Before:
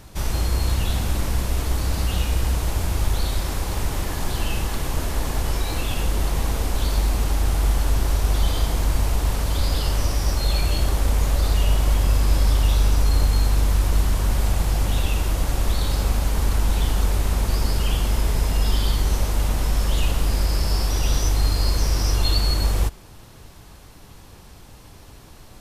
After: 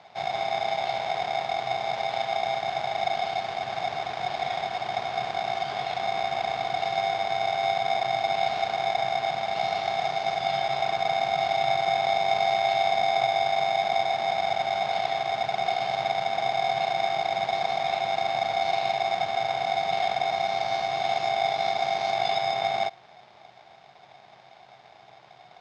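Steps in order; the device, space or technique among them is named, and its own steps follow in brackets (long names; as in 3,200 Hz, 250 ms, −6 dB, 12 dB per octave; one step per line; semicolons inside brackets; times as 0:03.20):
ring modulator pedal into a guitar cabinet (ring modulator with a square carrier 730 Hz; loudspeaker in its box 110–4,500 Hz, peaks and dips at 130 Hz +9 dB, 280 Hz −9 dB, 510 Hz −4 dB, 2,200 Hz −3 dB)
level −6.5 dB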